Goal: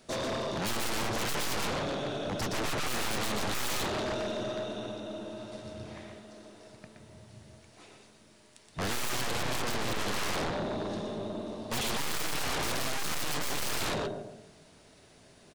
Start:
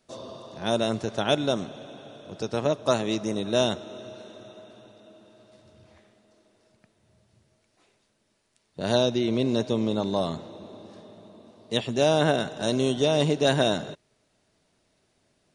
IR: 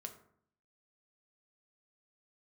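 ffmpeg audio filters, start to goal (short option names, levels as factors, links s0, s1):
-filter_complex "[0:a]asplit=2[s0][s1];[s1]adelay=141,lowpass=f=1300:p=1,volume=0.2,asplit=2[s2][s3];[s3]adelay=141,lowpass=f=1300:p=1,volume=0.46,asplit=2[s4][s5];[s5]adelay=141,lowpass=f=1300:p=1,volume=0.46,asplit=2[s6][s7];[s7]adelay=141,lowpass=f=1300:p=1,volume=0.46[s8];[s0][s2][s4][s6][s8]amix=inputs=5:normalize=0,asplit=2[s9][s10];[1:a]atrim=start_sample=2205,atrim=end_sample=3087,adelay=121[s11];[s10][s11]afir=irnorm=-1:irlink=0,volume=0.944[s12];[s9][s12]amix=inputs=2:normalize=0,aeval=exprs='(tanh(44.7*val(0)+0.75)-tanh(0.75))/44.7':c=same,aeval=exprs='0.0376*sin(PI/2*3.55*val(0)/0.0376)':c=same"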